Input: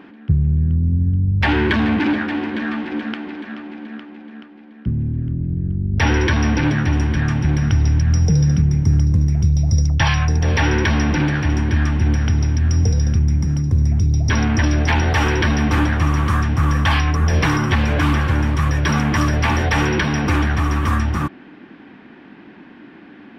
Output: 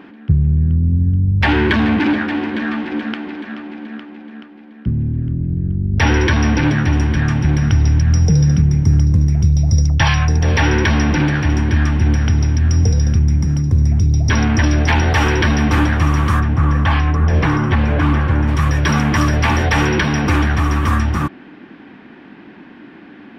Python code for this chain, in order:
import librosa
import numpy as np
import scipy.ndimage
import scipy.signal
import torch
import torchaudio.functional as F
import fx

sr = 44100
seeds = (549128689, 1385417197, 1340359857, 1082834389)

y = fx.lowpass(x, sr, hz=1600.0, slope=6, at=(16.39, 18.47), fade=0.02)
y = F.gain(torch.from_numpy(y), 2.5).numpy()